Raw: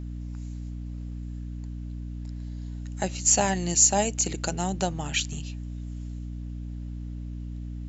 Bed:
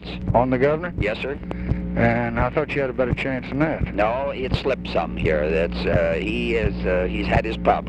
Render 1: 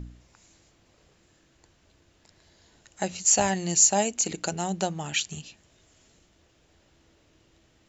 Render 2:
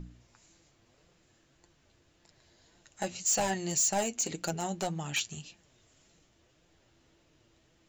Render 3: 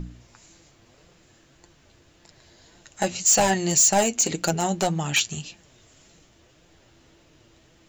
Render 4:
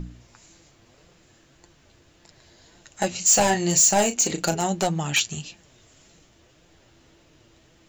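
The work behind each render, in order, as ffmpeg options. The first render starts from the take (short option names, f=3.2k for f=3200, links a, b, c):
-af "bandreject=f=60:t=h:w=4,bandreject=f=120:t=h:w=4,bandreject=f=180:t=h:w=4,bandreject=f=240:t=h:w=4,bandreject=f=300:t=h:w=4"
-af "asoftclip=type=hard:threshold=-20dB,flanger=delay=5.7:depth=3.1:regen=48:speed=1.8:shape=sinusoidal"
-af "volume=10dB"
-filter_complex "[0:a]asettb=1/sr,asplit=3[a][b][c];[a]atrim=end=3.184[d];[b]atrim=start=3.18:end=4.62,asetpts=PTS-STARTPTS,afade=t=in:d=0.004:c=qsin,afade=t=out:st=1.436:d=0.004:c=qsin,asplit=2[e][f];[f]adelay=34,volume=-10dB[g];[e][g]amix=inputs=2:normalize=0,atrim=end_sample=63504[h];[c]atrim=start=4.616[i];[d][h]acrossfade=d=0.004:c1=hsin:c2=qsin[j];[j][i]acrossfade=d=0.004:c1=qsin:c2=hsin"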